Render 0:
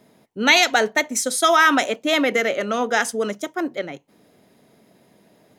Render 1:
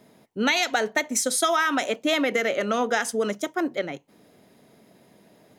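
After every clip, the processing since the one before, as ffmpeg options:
-af "acompressor=threshold=0.112:ratio=6"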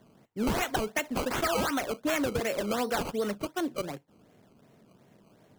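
-filter_complex "[0:a]acrossover=split=420[s0][s1];[s0]equalizer=f=110:t=o:w=1.1:g=7.5[s2];[s1]acrusher=samples=17:mix=1:aa=0.000001:lfo=1:lforange=17:lforate=2.7[s3];[s2][s3]amix=inputs=2:normalize=0,asoftclip=type=tanh:threshold=0.224,volume=0.562"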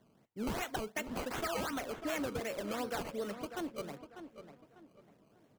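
-filter_complex "[0:a]asplit=2[s0][s1];[s1]adelay=596,lowpass=f=3100:p=1,volume=0.316,asplit=2[s2][s3];[s3]adelay=596,lowpass=f=3100:p=1,volume=0.32,asplit=2[s4][s5];[s5]adelay=596,lowpass=f=3100:p=1,volume=0.32,asplit=2[s6][s7];[s7]adelay=596,lowpass=f=3100:p=1,volume=0.32[s8];[s0][s2][s4][s6][s8]amix=inputs=5:normalize=0,volume=0.376"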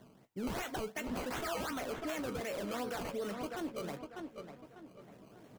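-filter_complex "[0:a]alimiter=level_in=4.22:limit=0.0631:level=0:latency=1:release=29,volume=0.237,areverse,acompressor=mode=upward:threshold=0.002:ratio=2.5,areverse,asplit=2[s0][s1];[s1]adelay=16,volume=0.282[s2];[s0][s2]amix=inputs=2:normalize=0,volume=1.68"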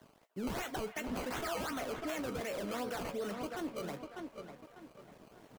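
-filter_complex "[0:a]acrossover=split=480|3700[s0][s1][s2];[s0]aeval=exprs='val(0)*gte(abs(val(0)),0.00141)':c=same[s3];[s1]aecho=1:1:296:0.211[s4];[s3][s4][s2]amix=inputs=3:normalize=0"

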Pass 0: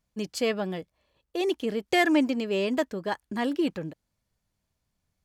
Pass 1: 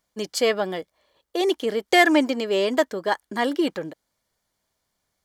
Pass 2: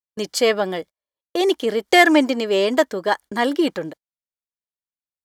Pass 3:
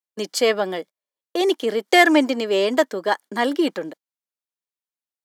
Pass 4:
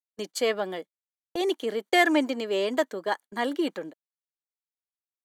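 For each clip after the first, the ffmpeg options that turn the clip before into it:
-af "bass=f=250:g=-14,treble=f=4000:g=0,bandreject=f=2600:w=7.6,volume=2.37"
-af "agate=range=0.02:threshold=0.0112:ratio=16:detection=peak,volume=1.5"
-af "highpass=f=190:w=0.5412,highpass=f=190:w=1.3066,volume=0.891"
-af "bandreject=f=5200:w=6.1,agate=range=0.0562:threshold=0.0251:ratio=16:detection=peak,volume=0.447"

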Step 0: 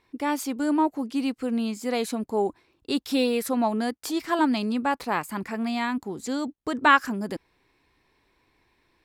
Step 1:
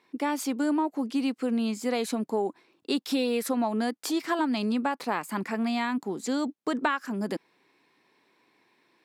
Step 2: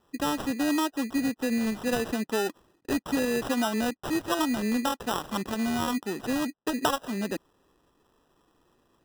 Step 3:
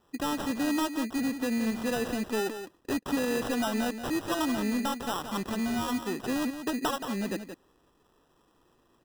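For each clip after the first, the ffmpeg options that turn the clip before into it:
-af "highpass=f=170:w=0.5412,highpass=f=170:w=1.3066,highshelf=f=12000:g=-5.5,acompressor=threshold=0.0631:ratio=16,volume=1.19"
-af "acrusher=samples=20:mix=1:aa=0.000001"
-af "asoftclip=type=tanh:threshold=0.0708,aecho=1:1:175:0.335"

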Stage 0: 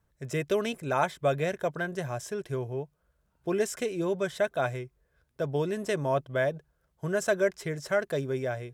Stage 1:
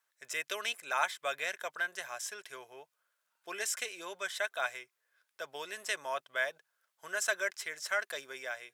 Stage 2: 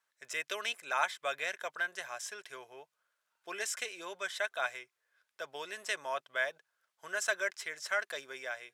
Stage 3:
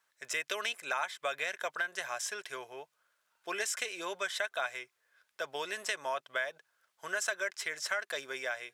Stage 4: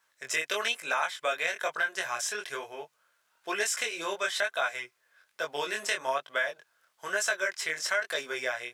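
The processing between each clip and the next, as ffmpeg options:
-af "highpass=1400,volume=1.41"
-af "highshelf=f=11000:g=-10"
-af "acompressor=threshold=0.0158:ratio=5,volume=1.88"
-af "flanger=delay=19:depth=6.1:speed=1.1,volume=2.51"

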